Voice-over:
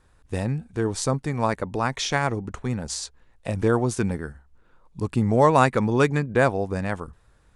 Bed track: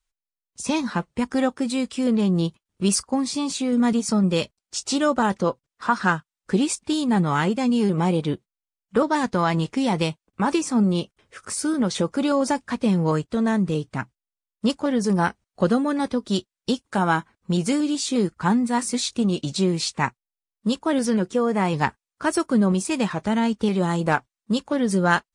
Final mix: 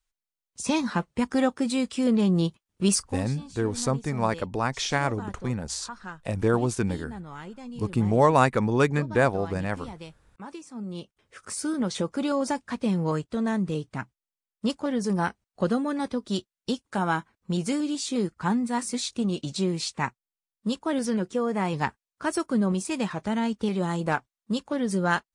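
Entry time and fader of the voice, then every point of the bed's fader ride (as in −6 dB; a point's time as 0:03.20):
2.80 s, −2.0 dB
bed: 0:02.94 −1.5 dB
0:03.39 −19 dB
0:10.73 −19 dB
0:11.28 −5 dB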